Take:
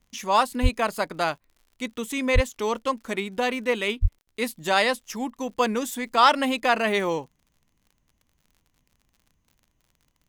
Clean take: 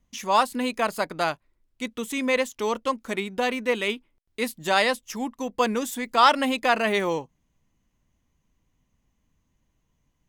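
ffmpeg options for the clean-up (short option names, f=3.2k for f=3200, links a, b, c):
-filter_complex "[0:a]adeclick=t=4,asplit=3[a][b][c];[a]afade=t=out:st=0.62:d=0.02[d];[b]highpass=f=140:w=0.5412,highpass=f=140:w=1.3066,afade=t=in:st=0.62:d=0.02,afade=t=out:st=0.74:d=0.02[e];[c]afade=t=in:st=0.74:d=0.02[f];[d][e][f]amix=inputs=3:normalize=0,asplit=3[g][h][i];[g]afade=t=out:st=2.34:d=0.02[j];[h]highpass=f=140:w=0.5412,highpass=f=140:w=1.3066,afade=t=in:st=2.34:d=0.02,afade=t=out:st=2.46:d=0.02[k];[i]afade=t=in:st=2.46:d=0.02[l];[j][k][l]amix=inputs=3:normalize=0,asplit=3[m][n][o];[m]afade=t=out:st=4.01:d=0.02[p];[n]highpass=f=140:w=0.5412,highpass=f=140:w=1.3066,afade=t=in:st=4.01:d=0.02,afade=t=out:st=4.13:d=0.02[q];[o]afade=t=in:st=4.13:d=0.02[r];[p][q][r]amix=inputs=3:normalize=0"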